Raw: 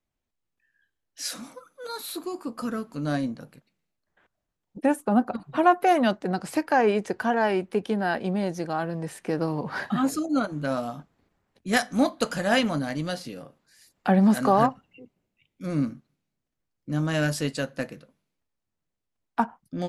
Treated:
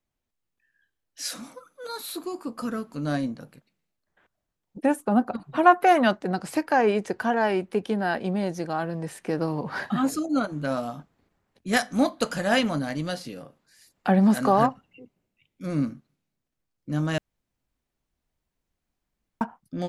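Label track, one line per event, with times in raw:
5.620000	6.350000	dynamic equaliser 1,400 Hz, up to +5 dB, over −31 dBFS, Q 0.76
17.180000	19.410000	fill with room tone

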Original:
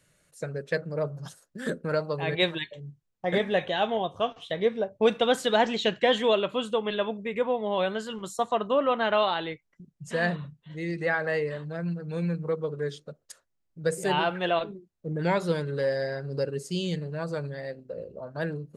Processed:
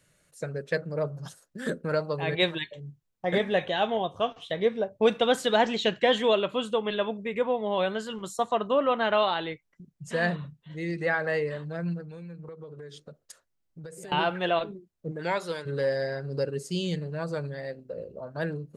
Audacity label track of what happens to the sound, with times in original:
12.010000	14.120000	downward compressor 12 to 1, threshold −39 dBFS
15.100000	15.650000	high-pass filter 420 Hz → 960 Hz 6 dB per octave

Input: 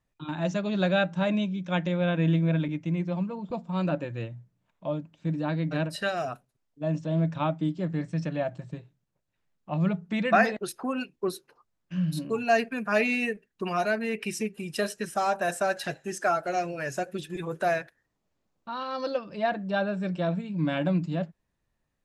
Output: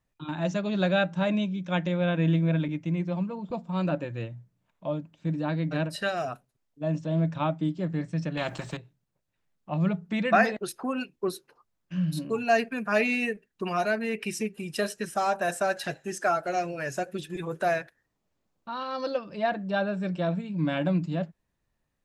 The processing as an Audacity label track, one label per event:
8.370000	8.770000	every bin compressed towards the loudest bin 2 to 1

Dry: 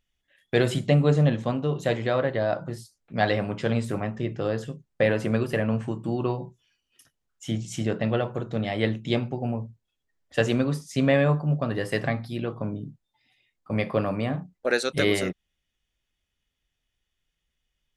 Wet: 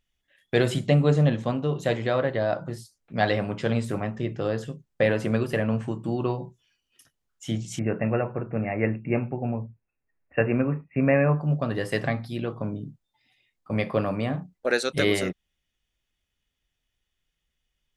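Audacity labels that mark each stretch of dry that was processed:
7.790000	11.410000	linear-phase brick-wall low-pass 2,800 Hz

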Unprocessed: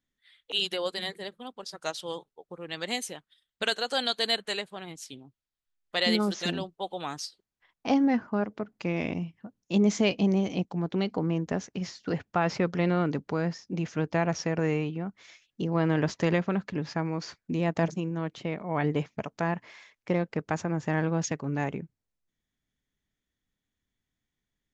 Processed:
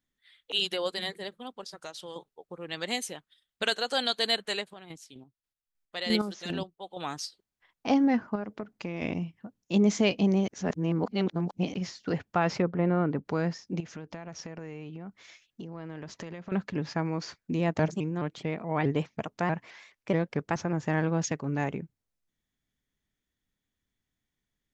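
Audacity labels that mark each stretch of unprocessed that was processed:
1.630000	2.160000	downward compressor 3 to 1, threshold −39 dBFS
4.630000	7.080000	square-wave tremolo 4.5 Hz → 1.9 Hz, depth 60%, duty 30%
8.350000	9.020000	downward compressor, threshold −30 dBFS
10.480000	11.740000	reverse
12.610000	13.240000	low-pass filter 1,100 Hz → 2,000 Hz
13.800000	16.520000	downward compressor 8 to 1, threshold −37 dBFS
17.790000	20.730000	pitch modulation by a square or saw wave saw up 4.7 Hz, depth 160 cents

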